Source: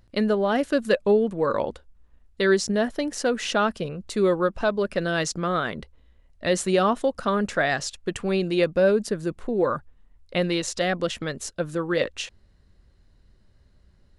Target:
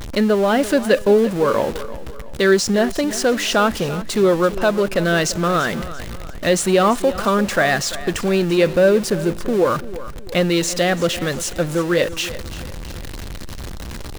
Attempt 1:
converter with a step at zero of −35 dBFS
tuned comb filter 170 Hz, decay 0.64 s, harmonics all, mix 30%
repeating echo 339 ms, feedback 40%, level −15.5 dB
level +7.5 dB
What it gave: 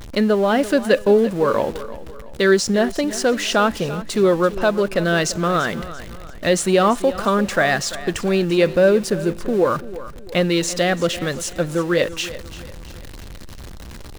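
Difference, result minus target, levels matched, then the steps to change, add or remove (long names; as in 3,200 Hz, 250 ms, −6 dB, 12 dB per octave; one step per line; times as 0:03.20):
converter with a step at zero: distortion −5 dB
change: converter with a step at zero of −29 dBFS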